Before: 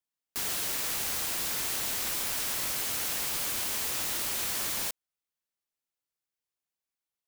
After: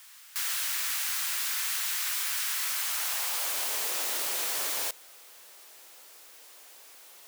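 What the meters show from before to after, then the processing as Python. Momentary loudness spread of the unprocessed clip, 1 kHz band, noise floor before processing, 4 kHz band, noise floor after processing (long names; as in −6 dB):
2 LU, +0.5 dB, below −85 dBFS, +1.5 dB, −52 dBFS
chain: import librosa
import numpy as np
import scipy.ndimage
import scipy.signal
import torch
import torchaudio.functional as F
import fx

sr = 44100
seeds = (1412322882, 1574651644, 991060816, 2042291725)

y = x + 0.5 * 10.0 ** (-43.5 / 20.0) * np.sign(x)
y = fx.filter_sweep_highpass(y, sr, from_hz=1400.0, to_hz=460.0, start_s=2.61, end_s=3.84, q=1.2)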